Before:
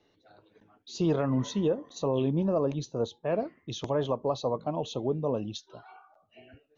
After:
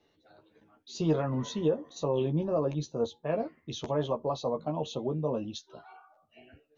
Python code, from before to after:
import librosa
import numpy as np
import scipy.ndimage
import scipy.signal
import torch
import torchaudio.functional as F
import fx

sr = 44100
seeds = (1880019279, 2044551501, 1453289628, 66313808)

y = fx.doubler(x, sr, ms=13.0, db=-5.0)
y = F.gain(torch.from_numpy(y), -2.5).numpy()